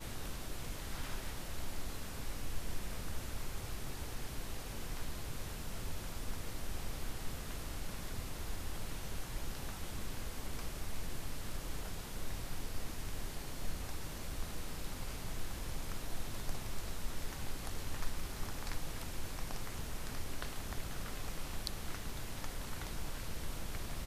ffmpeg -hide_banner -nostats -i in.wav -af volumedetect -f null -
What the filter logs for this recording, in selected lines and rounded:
mean_volume: -37.5 dB
max_volume: -19.0 dB